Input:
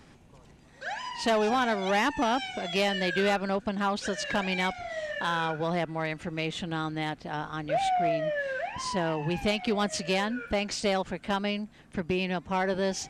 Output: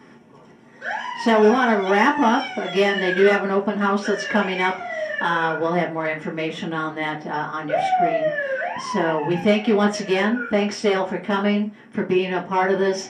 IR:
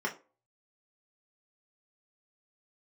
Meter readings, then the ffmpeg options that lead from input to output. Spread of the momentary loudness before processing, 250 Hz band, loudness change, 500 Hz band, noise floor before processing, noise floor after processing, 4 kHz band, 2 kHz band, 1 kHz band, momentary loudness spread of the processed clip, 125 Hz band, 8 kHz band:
8 LU, +9.0 dB, +8.0 dB, +9.5 dB, -55 dBFS, -47 dBFS, +3.0 dB, +8.0 dB, +7.5 dB, 10 LU, +5.0 dB, +0.5 dB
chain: -filter_complex "[0:a]flanger=delay=6.6:depth=6.2:regen=-71:speed=1.2:shape=triangular[s0];[1:a]atrim=start_sample=2205[s1];[s0][s1]afir=irnorm=-1:irlink=0,volume=2"

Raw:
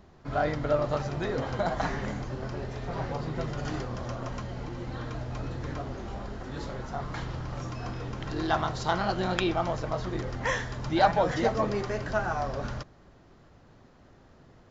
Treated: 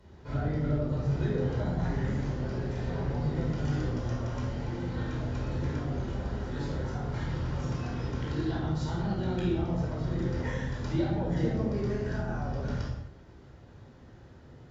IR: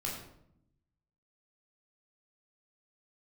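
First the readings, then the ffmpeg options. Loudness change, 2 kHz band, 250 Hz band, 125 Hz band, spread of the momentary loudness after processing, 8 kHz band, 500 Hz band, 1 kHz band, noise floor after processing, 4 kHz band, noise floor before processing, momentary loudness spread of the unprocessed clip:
-1.0 dB, -7.5 dB, +2.0 dB, +4.5 dB, 5 LU, no reading, -5.0 dB, -10.5 dB, -52 dBFS, -7.5 dB, -56 dBFS, 10 LU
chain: -filter_complex "[0:a]highpass=41,equalizer=f=1000:t=o:w=1.1:g=-3.5,acrossover=split=340[s0][s1];[s1]acompressor=threshold=0.00891:ratio=6[s2];[s0][s2]amix=inputs=2:normalize=0[s3];[1:a]atrim=start_sample=2205,afade=t=out:st=0.24:d=0.01,atrim=end_sample=11025,asetrate=30870,aresample=44100[s4];[s3][s4]afir=irnorm=-1:irlink=0,volume=0.75"

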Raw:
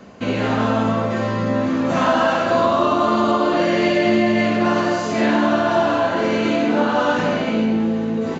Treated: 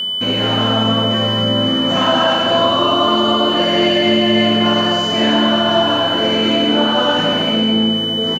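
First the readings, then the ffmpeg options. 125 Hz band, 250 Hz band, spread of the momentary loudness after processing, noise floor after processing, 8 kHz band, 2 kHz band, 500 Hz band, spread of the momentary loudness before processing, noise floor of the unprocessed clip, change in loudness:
+3.5 dB, +2.5 dB, 2 LU, -18 dBFS, no reading, +2.0 dB, +2.0 dB, 4 LU, -23 dBFS, +4.5 dB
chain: -af "aecho=1:1:209:0.398,aeval=exprs='val(0)+0.112*sin(2*PI*3000*n/s)':c=same,aeval=exprs='sgn(val(0))*max(abs(val(0))-0.00398,0)':c=same,volume=1.19"

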